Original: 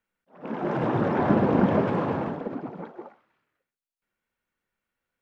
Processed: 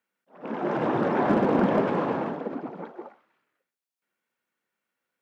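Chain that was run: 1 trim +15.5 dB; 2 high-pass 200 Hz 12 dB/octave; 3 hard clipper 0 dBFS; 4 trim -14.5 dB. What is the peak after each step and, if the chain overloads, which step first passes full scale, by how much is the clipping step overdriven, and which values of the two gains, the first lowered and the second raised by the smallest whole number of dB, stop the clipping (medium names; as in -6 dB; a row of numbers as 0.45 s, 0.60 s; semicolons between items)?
+7.5 dBFS, +6.0 dBFS, 0.0 dBFS, -14.5 dBFS; step 1, 6.0 dB; step 1 +9.5 dB, step 4 -8.5 dB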